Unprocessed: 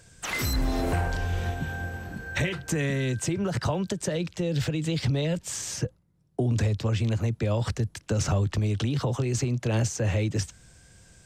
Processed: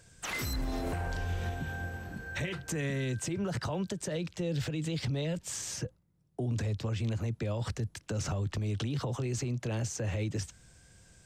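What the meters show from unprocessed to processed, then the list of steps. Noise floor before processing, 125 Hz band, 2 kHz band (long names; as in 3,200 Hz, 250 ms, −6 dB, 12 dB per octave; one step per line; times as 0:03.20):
−60 dBFS, −7.0 dB, −6.0 dB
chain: brickwall limiter −21 dBFS, peak gain reduction 6 dB
level −4.5 dB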